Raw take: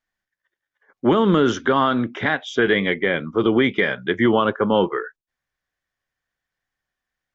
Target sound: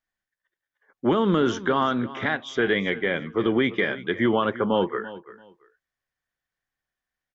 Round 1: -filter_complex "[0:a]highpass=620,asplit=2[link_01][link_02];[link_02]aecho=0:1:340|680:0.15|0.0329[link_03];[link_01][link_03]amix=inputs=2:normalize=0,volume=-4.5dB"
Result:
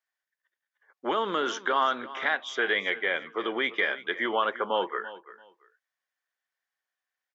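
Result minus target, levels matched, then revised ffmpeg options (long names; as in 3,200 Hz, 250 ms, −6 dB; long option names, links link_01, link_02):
500 Hz band −2.5 dB
-filter_complex "[0:a]asplit=2[link_01][link_02];[link_02]aecho=0:1:340|680:0.15|0.0329[link_03];[link_01][link_03]amix=inputs=2:normalize=0,volume=-4.5dB"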